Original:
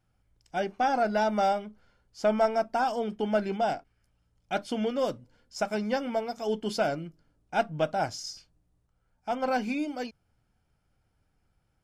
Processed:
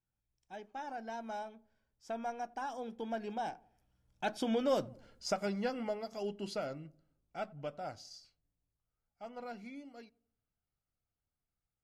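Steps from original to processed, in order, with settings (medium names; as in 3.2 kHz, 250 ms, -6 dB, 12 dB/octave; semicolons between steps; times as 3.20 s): Doppler pass-by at 4.86 s, 22 m/s, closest 8.5 m; filtered feedback delay 88 ms, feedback 47%, low-pass 890 Hz, level -22.5 dB; compression 1.5:1, threshold -42 dBFS, peak gain reduction 6.5 dB; trim +4 dB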